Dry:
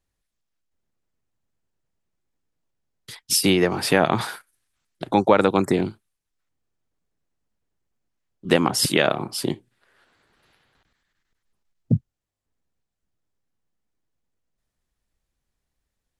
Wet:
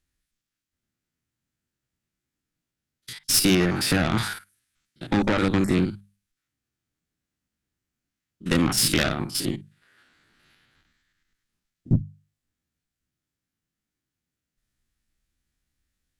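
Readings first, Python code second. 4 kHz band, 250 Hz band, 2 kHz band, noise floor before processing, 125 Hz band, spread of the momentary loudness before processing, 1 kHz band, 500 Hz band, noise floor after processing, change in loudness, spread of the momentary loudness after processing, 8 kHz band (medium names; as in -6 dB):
0.0 dB, 0.0 dB, -1.5 dB, -82 dBFS, +1.5 dB, 12 LU, -7.5 dB, -7.5 dB, under -85 dBFS, -2.0 dB, 14 LU, +1.0 dB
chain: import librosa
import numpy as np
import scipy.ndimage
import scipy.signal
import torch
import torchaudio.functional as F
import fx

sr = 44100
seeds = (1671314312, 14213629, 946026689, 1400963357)

y = fx.spec_steps(x, sr, hold_ms=50)
y = fx.hum_notches(y, sr, base_hz=50, count=4)
y = fx.tube_stage(y, sr, drive_db=19.0, bias=0.65)
y = fx.band_shelf(y, sr, hz=660.0, db=-8.5, octaves=1.7)
y = y * 10.0 ** (7.0 / 20.0)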